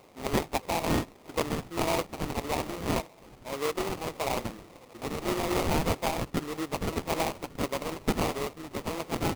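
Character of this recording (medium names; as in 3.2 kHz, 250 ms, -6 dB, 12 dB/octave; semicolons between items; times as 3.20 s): phasing stages 4, 1.7 Hz, lowest notch 560–1900 Hz; aliases and images of a low sample rate 1.6 kHz, jitter 20%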